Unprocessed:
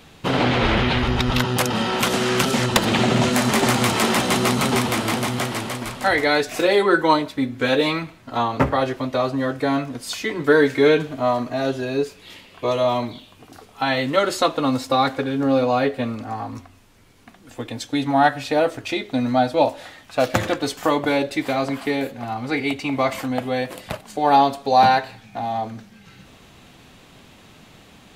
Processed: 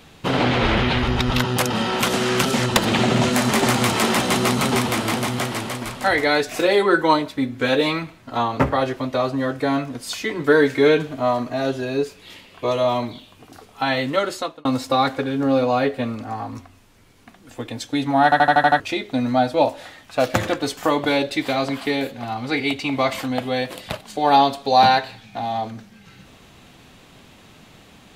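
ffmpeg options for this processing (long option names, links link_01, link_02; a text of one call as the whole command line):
ffmpeg -i in.wav -filter_complex "[0:a]asettb=1/sr,asplit=3[link_01][link_02][link_03];[link_01]atrim=end=20.984[link_04];[link_02]atrim=start=20.98:end=25.71,asetpts=PTS-STARTPTS,afade=type=in:duration=0.004:curve=qsin,afade=type=out:start_time=4.726:duration=0.004:curve=qsin,equalizer=frequency=3700:width_type=o:width=0.94:gain=5.5[link_05];[link_03]atrim=start=25.706[link_06];[link_04][link_05]acrossfade=duration=0.004:curve1=hsin:curve2=qsin[link_07];[link_07][link_06]acrossfade=duration=0.004:curve1=qsin:curve2=hsin,asplit=9[link_08][link_09][link_10][link_11][link_12][link_13][link_14][link_15][link_16];[link_08]atrim=end=14.65,asetpts=PTS-STARTPTS,afade=type=out:start_time=13.85:duration=0.8:curve=qsin[link_17];[link_09]atrim=start=14.65:end=18.322,asetpts=PTS-STARTPTS,afade=type=in:duration=0.004:curve=hsin[link_18];[link_10]atrim=start=18.238:end=18.322[link_19];[link_11]atrim=start=18.238:end=18.322[link_20];[link_12]atrim=start=18.238:end=18.322[link_21];[link_13]atrim=start=18.238:end=18.322[link_22];[link_14]atrim=start=18.238:end=18.322[link_23];[link_15]atrim=start=18.238:end=18.322[link_24];[link_16]atrim=start=18.798[link_25];[link_17][link_18]concat=n=2:v=0:a=1[link_26];[link_26][link_19]acrossfade=duration=0.004:curve1=hsin:curve2=hsin[link_27];[link_27][link_20]acrossfade=duration=0.004:curve1=hsin:curve2=hsin[link_28];[link_28][link_21]acrossfade=duration=0.004:curve1=hsin:curve2=hsin[link_29];[link_29][link_22]acrossfade=duration=0.004:curve1=hsin:curve2=hsin[link_30];[link_30][link_23]acrossfade=duration=0.004:curve1=hsin:curve2=hsin[link_31];[link_31][link_24]acrossfade=duration=0.004:curve1=hsin:curve2=hsin[link_32];[link_32][link_25]acrossfade=duration=0.004:curve1=hsin:curve2=hsin" out.wav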